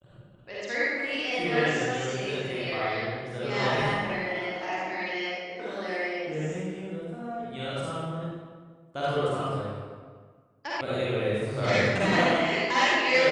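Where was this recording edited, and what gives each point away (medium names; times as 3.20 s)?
10.81 s: sound stops dead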